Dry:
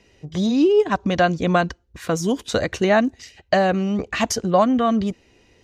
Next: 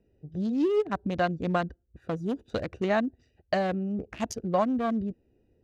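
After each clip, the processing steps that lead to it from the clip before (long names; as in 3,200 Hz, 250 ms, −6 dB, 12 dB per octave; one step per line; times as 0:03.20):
adaptive Wiener filter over 41 samples
level −8 dB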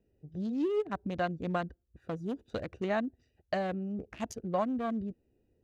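dynamic equaliser 5,200 Hz, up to −5 dB, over −57 dBFS, Q 3
level −5.5 dB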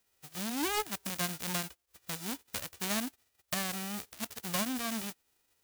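spectral envelope flattened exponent 0.1
level −2.5 dB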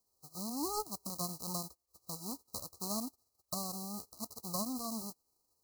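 linear-phase brick-wall band-stop 1,300–3,900 Hz
level −3.5 dB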